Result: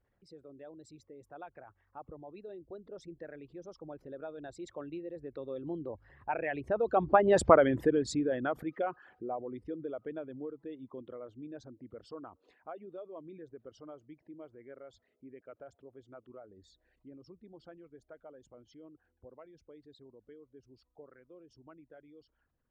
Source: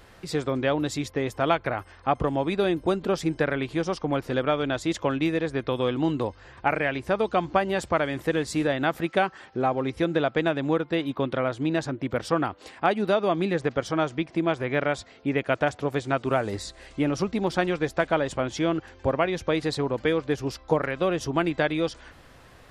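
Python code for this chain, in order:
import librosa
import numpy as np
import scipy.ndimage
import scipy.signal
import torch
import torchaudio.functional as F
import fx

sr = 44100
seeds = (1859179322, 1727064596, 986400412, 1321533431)

y = fx.envelope_sharpen(x, sr, power=2.0)
y = fx.doppler_pass(y, sr, speed_mps=19, closest_m=4.7, pass_at_s=7.47)
y = y * librosa.db_to_amplitude(4.0)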